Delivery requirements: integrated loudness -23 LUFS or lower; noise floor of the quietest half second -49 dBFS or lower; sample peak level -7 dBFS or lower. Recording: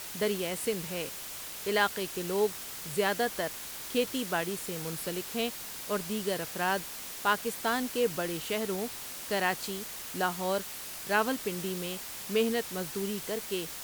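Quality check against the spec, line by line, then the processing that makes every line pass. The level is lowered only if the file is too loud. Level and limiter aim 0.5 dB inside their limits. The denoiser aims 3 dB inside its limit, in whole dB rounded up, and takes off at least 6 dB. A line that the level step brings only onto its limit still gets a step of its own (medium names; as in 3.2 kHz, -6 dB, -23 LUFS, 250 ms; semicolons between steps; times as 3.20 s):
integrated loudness -32.0 LUFS: pass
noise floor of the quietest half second -41 dBFS: fail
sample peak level -13.0 dBFS: pass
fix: noise reduction 11 dB, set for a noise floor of -41 dBFS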